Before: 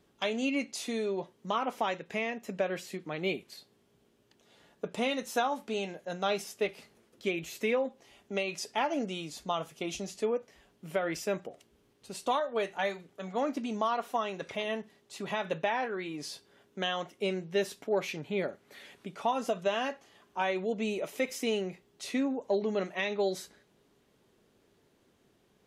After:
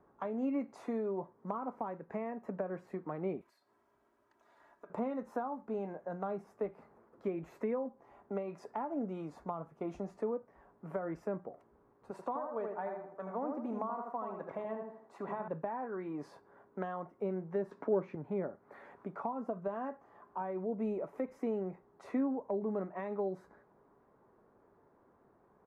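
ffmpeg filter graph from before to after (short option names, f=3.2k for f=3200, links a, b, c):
-filter_complex "[0:a]asettb=1/sr,asplit=3[a][b][c];[a]atrim=end=3.414[d];[b]atrim=start=3.41:end=4.9,asetpts=PTS-STARTPTS,afade=t=in:d=0.004:c=qsin,afade=t=out:st=1.486:d=0.004:c=qsin,tiltshelf=f=1.4k:g=-10,aecho=1:1:3.1:0.51,atrim=end_sample=65709,acompressor=threshold=-54dB:ratio=2.5:attack=3.2:release=140:knee=1:detection=peak[e];[c]atrim=start=4.896[f];[d][e]acrossfade=d=0.004:c1=hsin:c2=qsin[g];[g][f]acrossfade=d=0.004:c1=qsin:c2=hsin,asettb=1/sr,asplit=3[h][i][j];[h]atrim=end=12.114[k];[i]atrim=start=12.11:end=15.48,asetpts=PTS-STARTPTS,afade=t=in:d=0.004:c=qsin,afade=t=out:st=3.366:d=0.004:c=qsin,lowshelf=f=170:g=-10,asplit=2[l][m];[m]adelay=79,lowpass=f=2k:p=1,volume=-4dB,asplit=2[n][o];[o]adelay=79,lowpass=f=2k:p=1,volume=0.35,asplit=2[p][q];[q]adelay=79,lowpass=f=2k:p=1,volume=0.35,asplit=2[r][s];[s]adelay=79,lowpass=f=2k:p=1,volume=0.35[t];[l][n][p][r][t]amix=inputs=5:normalize=0,atrim=end_sample=148617[u];[j]atrim=start=15.476[v];[k][u]acrossfade=d=0.004:c1=hsin:c2=qsin[w];[w][v]acrossfade=d=0.004:c1=qsin:c2=hsin,asettb=1/sr,asplit=3[x][y][z];[x]atrim=end=17.714[aa];[y]atrim=start=17.71:end=18.15,asetpts=PTS-STARTPTS,afade=t=in:d=0.004:c=qsin,afade=t=out:st=0.436:d=0.004:c=qsin,acontrast=85,highpass=180,lowpass=6k,equalizer=f=750:w=6.4:g=-8[ab];[z]atrim=start=18.146[ac];[aa][ab]acrossfade=d=0.004:c1=hsin:c2=qsin[ad];[ad][ac]acrossfade=d=0.004:c1=qsin:c2=hsin,firequalizer=gain_entry='entry(160,0);entry(1000,11);entry(3000,-23)':delay=0.05:min_phase=1,acrossover=split=320[ae][af];[af]acompressor=threshold=-39dB:ratio=4[ag];[ae][ag]amix=inputs=2:normalize=0,volume=-2dB"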